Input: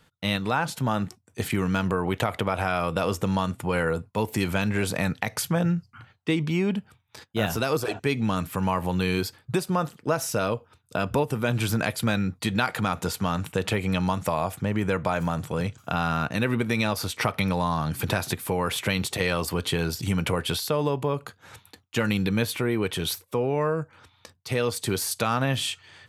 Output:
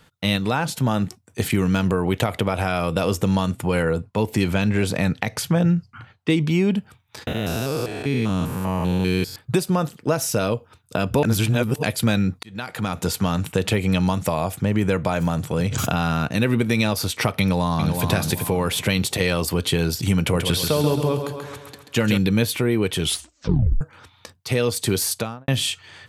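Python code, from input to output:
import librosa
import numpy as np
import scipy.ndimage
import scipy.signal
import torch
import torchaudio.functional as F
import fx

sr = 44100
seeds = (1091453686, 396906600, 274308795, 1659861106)

y = fx.high_shelf(x, sr, hz=7400.0, db=-9.0, at=(3.82, 6.3))
y = fx.spec_steps(y, sr, hold_ms=200, at=(7.27, 9.36))
y = fx.pre_swell(y, sr, db_per_s=27.0, at=(15.56, 16.13))
y = fx.echo_throw(y, sr, start_s=17.41, length_s=0.65, ms=380, feedback_pct=30, wet_db=-5.5)
y = fx.echo_feedback(y, sr, ms=135, feedback_pct=52, wet_db=-7.0, at=(20.21, 22.18))
y = fx.studio_fade_out(y, sr, start_s=25.06, length_s=0.42)
y = fx.edit(y, sr, fx.reverse_span(start_s=11.23, length_s=0.6),
    fx.fade_in_span(start_s=12.43, length_s=0.66),
    fx.tape_stop(start_s=23.01, length_s=0.8), tone=tone)
y = fx.dynamic_eq(y, sr, hz=1200.0, q=0.74, threshold_db=-38.0, ratio=4.0, max_db=-6)
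y = y * 10.0 ** (6.0 / 20.0)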